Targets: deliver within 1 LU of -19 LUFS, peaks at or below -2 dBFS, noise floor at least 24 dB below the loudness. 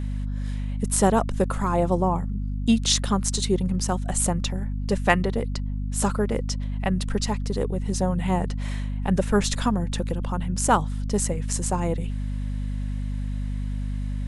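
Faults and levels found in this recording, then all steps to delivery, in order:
hum 50 Hz; highest harmonic 250 Hz; hum level -25 dBFS; loudness -25.5 LUFS; peak level -4.0 dBFS; loudness target -19.0 LUFS
-> hum notches 50/100/150/200/250 Hz; trim +6.5 dB; peak limiter -2 dBFS

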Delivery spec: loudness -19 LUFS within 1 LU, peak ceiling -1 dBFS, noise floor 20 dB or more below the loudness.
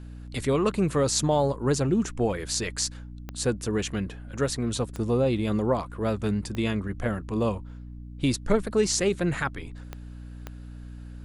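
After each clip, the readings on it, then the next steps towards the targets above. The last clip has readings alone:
clicks found 5; hum 60 Hz; highest harmonic 300 Hz; hum level -38 dBFS; loudness -27.0 LUFS; peak level -8.0 dBFS; loudness target -19.0 LUFS
-> de-click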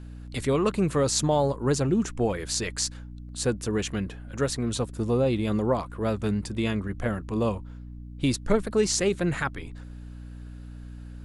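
clicks found 0; hum 60 Hz; highest harmonic 300 Hz; hum level -38 dBFS
-> hum notches 60/120/180/240/300 Hz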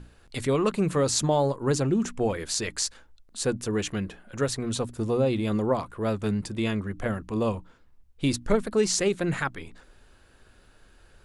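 hum not found; loudness -27.0 LUFS; peak level -8.0 dBFS; loudness target -19.0 LUFS
-> trim +8 dB; peak limiter -1 dBFS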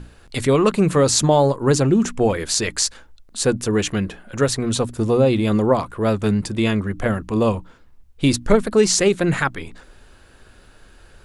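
loudness -19.0 LUFS; peak level -1.0 dBFS; noise floor -50 dBFS

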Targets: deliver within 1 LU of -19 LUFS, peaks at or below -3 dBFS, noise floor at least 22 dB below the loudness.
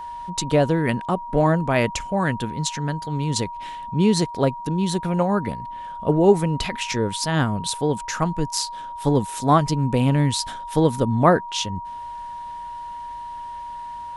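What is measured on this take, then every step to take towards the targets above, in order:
steady tone 950 Hz; tone level -31 dBFS; loudness -22.0 LUFS; peak level -3.5 dBFS; loudness target -19.0 LUFS
-> band-stop 950 Hz, Q 30; trim +3 dB; peak limiter -3 dBFS

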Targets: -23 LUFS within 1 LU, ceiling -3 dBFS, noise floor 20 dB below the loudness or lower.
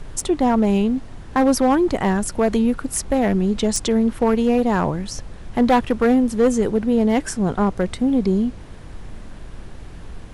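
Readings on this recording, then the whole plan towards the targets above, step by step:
clipped samples 1.9%; clipping level -10.0 dBFS; noise floor -37 dBFS; noise floor target -40 dBFS; loudness -19.5 LUFS; peak level -10.0 dBFS; loudness target -23.0 LUFS
-> clip repair -10 dBFS; noise print and reduce 6 dB; trim -3.5 dB

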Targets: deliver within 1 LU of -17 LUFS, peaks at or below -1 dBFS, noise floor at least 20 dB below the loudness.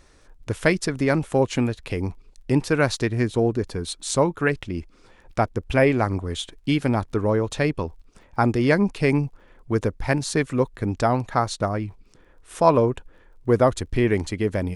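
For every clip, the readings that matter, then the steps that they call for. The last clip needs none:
tick rate 23 per s; loudness -23.0 LUFS; peak level -3.0 dBFS; loudness target -17.0 LUFS
-> de-click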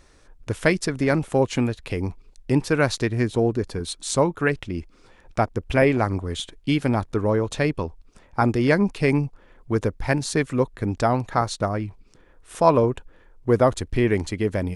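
tick rate 0 per s; loudness -23.0 LUFS; peak level -3.0 dBFS; loudness target -17.0 LUFS
-> trim +6 dB; peak limiter -1 dBFS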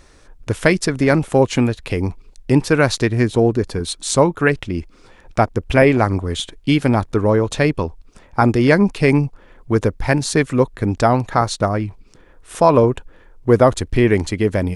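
loudness -17.5 LUFS; peak level -1.0 dBFS; noise floor -49 dBFS

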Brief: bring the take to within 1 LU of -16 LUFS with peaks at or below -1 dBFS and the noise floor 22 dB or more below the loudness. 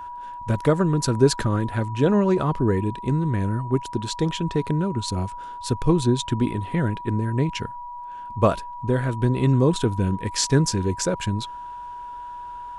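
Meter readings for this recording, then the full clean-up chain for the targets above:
steady tone 970 Hz; tone level -33 dBFS; loudness -23.0 LUFS; peak level -5.0 dBFS; loudness target -16.0 LUFS
-> band-stop 970 Hz, Q 30; trim +7 dB; peak limiter -1 dBFS

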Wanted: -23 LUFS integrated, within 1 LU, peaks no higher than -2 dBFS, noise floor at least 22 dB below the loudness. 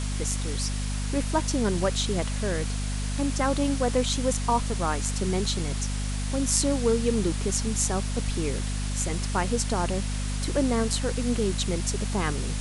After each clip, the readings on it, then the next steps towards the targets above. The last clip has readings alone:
hum 50 Hz; highest harmonic 250 Hz; hum level -27 dBFS; noise floor -29 dBFS; noise floor target -49 dBFS; loudness -27.0 LUFS; peak level -5.0 dBFS; loudness target -23.0 LUFS
-> de-hum 50 Hz, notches 5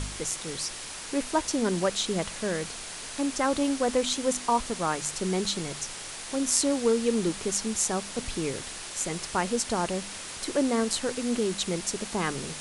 hum not found; noise floor -39 dBFS; noise floor target -51 dBFS
-> noise reduction 12 dB, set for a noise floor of -39 dBFS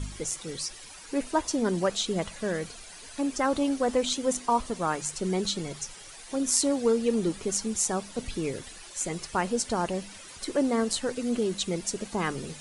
noise floor -46 dBFS; noise floor target -51 dBFS
-> noise reduction 6 dB, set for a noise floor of -46 dBFS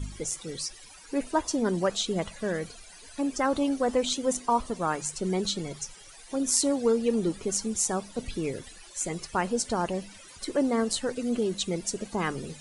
noise floor -49 dBFS; noise floor target -51 dBFS
-> noise reduction 6 dB, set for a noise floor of -49 dBFS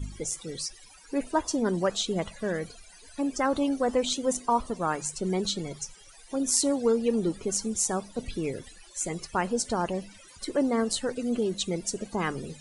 noise floor -52 dBFS; loudness -29.0 LUFS; peak level -5.0 dBFS; loudness target -23.0 LUFS
-> trim +6 dB; peak limiter -2 dBFS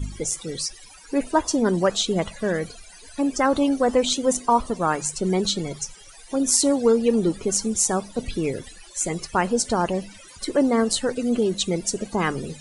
loudness -23.0 LUFS; peak level -2.0 dBFS; noise floor -46 dBFS

